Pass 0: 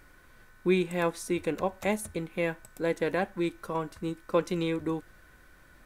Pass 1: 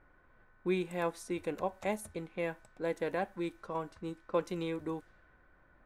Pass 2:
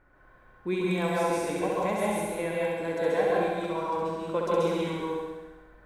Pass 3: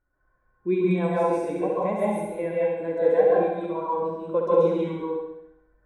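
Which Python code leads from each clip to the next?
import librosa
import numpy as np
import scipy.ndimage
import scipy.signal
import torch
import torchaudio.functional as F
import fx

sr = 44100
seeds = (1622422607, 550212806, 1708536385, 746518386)

y1 = fx.env_lowpass(x, sr, base_hz=1600.0, full_db=-28.0)
y1 = fx.peak_eq(y1, sr, hz=750.0, db=4.5, octaves=1.3)
y1 = y1 * librosa.db_to_amplitude(-8.0)
y2 = fx.room_flutter(y1, sr, wall_m=11.4, rt60_s=1.1)
y2 = fx.rev_plate(y2, sr, seeds[0], rt60_s=0.83, hf_ratio=1.0, predelay_ms=120, drr_db=-4.0)
y2 = y2 * librosa.db_to_amplitude(1.0)
y3 = fx.spectral_expand(y2, sr, expansion=1.5)
y3 = y3 * librosa.db_to_amplitude(5.0)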